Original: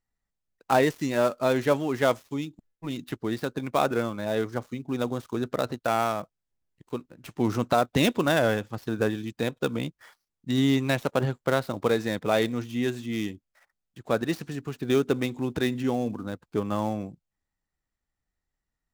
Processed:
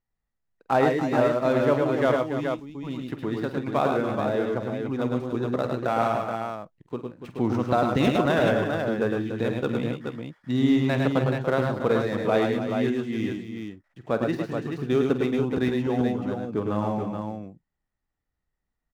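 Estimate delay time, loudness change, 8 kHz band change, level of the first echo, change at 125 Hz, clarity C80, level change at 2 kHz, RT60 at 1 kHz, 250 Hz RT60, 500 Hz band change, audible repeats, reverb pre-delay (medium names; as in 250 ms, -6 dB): 48 ms, +2.0 dB, no reading, -13.0 dB, +3.0 dB, no reverb, +0.5 dB, no reverb, no reverb, +2.5 dB, 5, no reverb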